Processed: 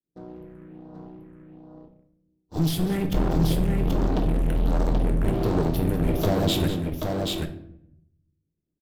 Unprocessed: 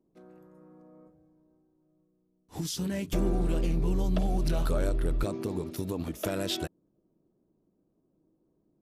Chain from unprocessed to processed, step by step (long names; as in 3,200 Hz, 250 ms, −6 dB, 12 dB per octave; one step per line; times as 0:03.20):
low-shelf EQ 390 Hz +5.5 dB
downward expander −57 dBFS
leveller curve on the samples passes 3
all-pass phaser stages 4, 1.3 Hz, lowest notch 780–2,200 Hz
asymmetric clip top −35.5 dBFS
multi-tap delay 195/781 ms −13/−3 dB
rectangular room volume 190 cubic metres, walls mixed, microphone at 0.47 metres
one half of a high-frequency compander decoder only